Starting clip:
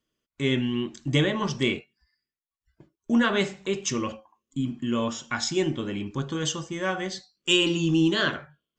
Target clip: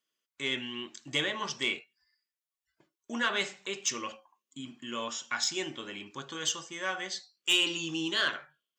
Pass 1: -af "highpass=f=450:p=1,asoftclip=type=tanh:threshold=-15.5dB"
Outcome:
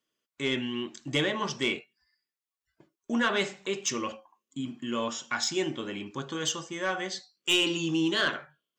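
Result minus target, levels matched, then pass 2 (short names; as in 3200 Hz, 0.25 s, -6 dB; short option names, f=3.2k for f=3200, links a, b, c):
500 Hz band +5.0 dB
-af "highpass=f=1.4k:p=1,asoftclip=type=tanh:threshold=-15.5dB"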